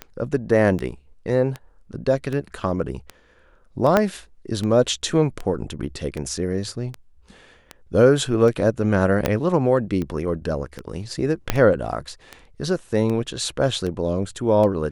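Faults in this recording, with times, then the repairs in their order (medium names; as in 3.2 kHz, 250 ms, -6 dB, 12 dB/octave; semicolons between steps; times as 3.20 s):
tick 78 rpm -16 dBFS
3.97 s: pop -4 dBFS
9.26 s: pop -5 dBFS
11.50 s: pop -3 dBFS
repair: de-click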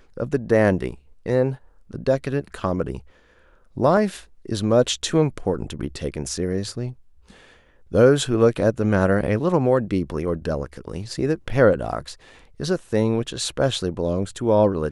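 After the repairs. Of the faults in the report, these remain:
3.97 s: pop
9.26 s: pop
11.50 s: pop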